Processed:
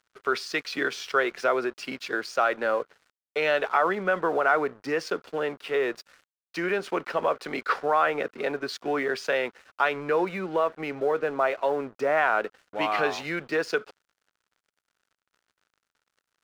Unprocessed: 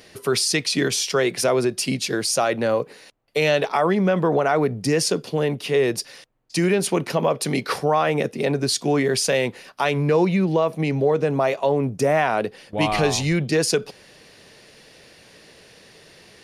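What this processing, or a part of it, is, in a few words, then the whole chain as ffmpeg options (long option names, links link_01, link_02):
pocket radio on a weak battery: -af "highpass=360,lowpass=3200,aeval=exprs='sgn(val(0))*max(abs(val(0))-0.00596,0)':channel_layout=same,equalizer=frequency=1400:width_type=o:width=0.59:gain=10,volume=-4.5dB"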